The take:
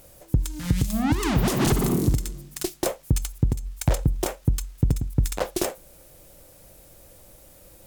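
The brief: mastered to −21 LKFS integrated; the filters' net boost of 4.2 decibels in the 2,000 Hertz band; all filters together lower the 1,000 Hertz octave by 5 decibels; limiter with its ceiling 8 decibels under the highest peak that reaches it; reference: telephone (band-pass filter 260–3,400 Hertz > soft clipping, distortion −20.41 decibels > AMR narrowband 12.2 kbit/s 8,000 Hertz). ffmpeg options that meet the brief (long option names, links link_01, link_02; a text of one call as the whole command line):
ffmpeg -i in.wav -af "equalizer=frequency=1000:width_type=o:gain=-9,equalizer=frequency=2000:width_type=o:gain=8.5,alimiter=limit=-17.5dB:level=0:latency=1,highpass=260,lowpass=3400,asoftclip=threshold=-22dB,volume=16dB" -ar 8000 -c:a libopencore_amrnb -b:a 12200 out.amr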